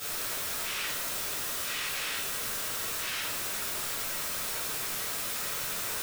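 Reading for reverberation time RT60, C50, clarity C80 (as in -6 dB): 0.75 s, 2.0 dB, 6.5 dB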